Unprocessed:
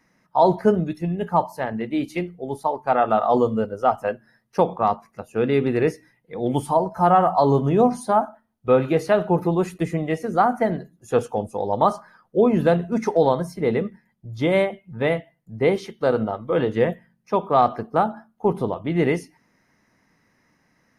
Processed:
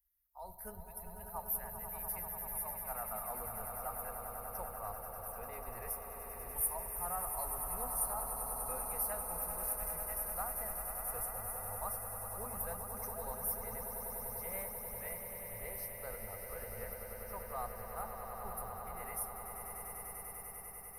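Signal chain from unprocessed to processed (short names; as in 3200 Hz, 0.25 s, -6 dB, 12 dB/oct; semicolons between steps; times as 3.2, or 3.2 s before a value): inverse Chebyshev band-stop 130–7500 Hz, stop band 50 dB; tilt +4 dB/oct; AGC gain up to 15.5 dB; air absorption 53 m; swelling echo 98 ms, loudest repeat 8, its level -9.5 dB; gain +11 dB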